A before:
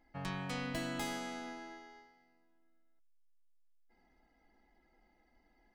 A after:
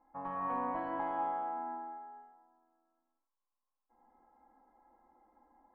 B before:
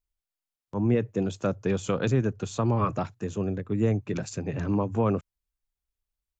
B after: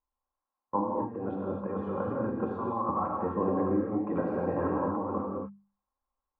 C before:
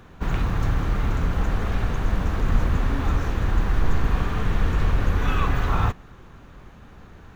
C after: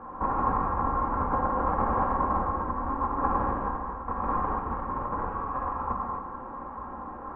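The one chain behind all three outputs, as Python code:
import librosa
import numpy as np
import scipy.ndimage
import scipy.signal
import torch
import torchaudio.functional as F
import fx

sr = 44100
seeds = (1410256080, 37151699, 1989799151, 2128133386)

y = fx.low_shelf(x, sr, hz=170.0, db=-12.0)
y = fx.hum_notches(y, sr, base_hz=50, count=4)
y = y + 0.47 * np.pad(y, (int(3.7 * sr / 1000.0), 0))[:len(y)]
y = fx.over_compress(y, sr, threshold_db=-32.0, ratio=-0.5)
y = fx.ladder_lowpass(y, sr, hz=1100.0, resonance_pct=70)
y = fx.rev_gated(y, sr, seeds[0], gate_ms=300, shape='flat', drr_db=-2.5)
y = y * 10.0 ** (9.0 / 20.0)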